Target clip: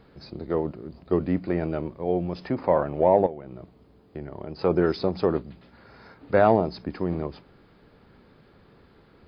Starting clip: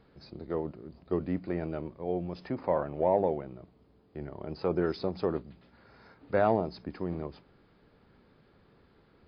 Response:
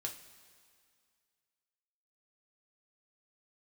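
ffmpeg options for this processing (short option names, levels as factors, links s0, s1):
-filter_complex "[0:a]asettb=1/sr,asplit=3[s0][s1][s2];[s0]atrim=end=3.264[s3];[s1]atrim=start=3.26:end=4.59,asetpts=PTS-STARTPTS,afade=t=in:d=0.004:c=qsin,afade=t=out:st=1.326:d=0.004:c=qsin,acompressor=threshold=0.0126:ratio=8[s4];[s2]atrim=start=4.586[s5];[s3][s4]acrossfade=d=0.004:c1=hsin:c2=qsin[s6];[s6][s5]acrossfade=d=0.004:c1=qsin:c2=hsin,volume=2.24"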